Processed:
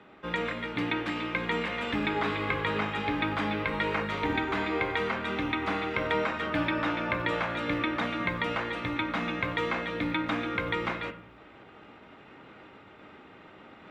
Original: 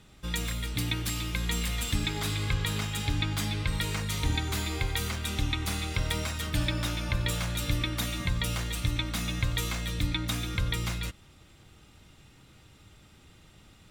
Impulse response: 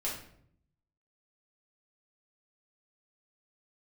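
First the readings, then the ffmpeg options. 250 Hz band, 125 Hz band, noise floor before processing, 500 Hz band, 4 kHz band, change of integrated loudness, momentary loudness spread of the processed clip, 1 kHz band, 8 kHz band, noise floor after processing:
+4.0 dB, −9.0 dB, −56 dBFS, +9.5 dB, −5.0 dB, +0.5 dB, 3 LU, +9.0 dB, below −20 dB, −52 dBFS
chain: -filter_complex "[0:a]lowpass=4900,asplit=2[link_01][link_02];[1:a]atrim=start_sample=2205,lowpass=2900[link_03];[link_02][link_03]afir=irnorm=-1:irlink=0,volume=-8.5dB[link_04];[link_01][link_04]amix=inputs=2:normalize=0,acrusher=bits=8:mode=log:mix=0:aa=0.000001,areverse,acompressor=mode=upward:threshold=-42dB:ratio=2.5,areverse,highpass=frequency=140:poles=1,acrossover=split=240 2500:gain=0.141 1 0.0794[link_05][link_06][link_07];[link_05][link_06][link_07]amix=inputs=3:normalize=0,volume=7dB"

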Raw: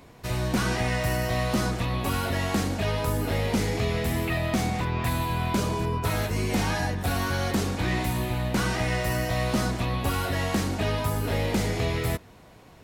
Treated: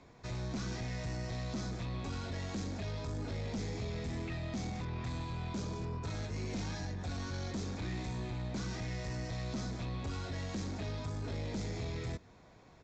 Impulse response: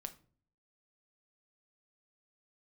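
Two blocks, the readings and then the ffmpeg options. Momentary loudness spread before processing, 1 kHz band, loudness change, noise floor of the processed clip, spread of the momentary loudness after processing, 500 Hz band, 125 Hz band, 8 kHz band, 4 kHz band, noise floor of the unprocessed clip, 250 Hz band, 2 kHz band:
2 LU, −17.0 dB, −12.5 dB, −59 dBFS, 1 LU, −15.0 dB, −11.0 dB, −14.0 dB, −13.5 dB, −51 dBFS, −12.0 dB, −16.5 dB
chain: -filter_complex "[0:a]bandreject=frequency=2900:width=6.9,acrossover=split=390|3000[link_01][link_02][link_03];[link_02]acompressor=threshold=-37dB:ratio=6[link_04];[link_01][link_04][link_03]amix=inputs=3:normalize=0,aresample=16000,asoftclip=type=tanh:threshold=-25dB,aresample=44100,volume=-8dB"

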